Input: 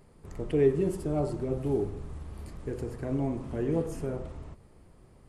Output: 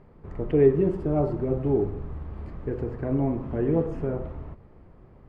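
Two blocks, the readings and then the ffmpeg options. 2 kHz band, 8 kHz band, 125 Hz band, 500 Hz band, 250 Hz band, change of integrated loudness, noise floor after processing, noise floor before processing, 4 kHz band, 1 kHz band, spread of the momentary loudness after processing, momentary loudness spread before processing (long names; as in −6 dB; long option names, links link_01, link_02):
+2.0 dB, below −20 dB, +5.0 dB, +5.0 dB, +5.0 dB, +5.0 dB, −52 dBFS, −57 dBFS, can't be measured, +5.0 dB, 18 LU, 18 LU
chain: -af "lowpass=1900,volume=5dB"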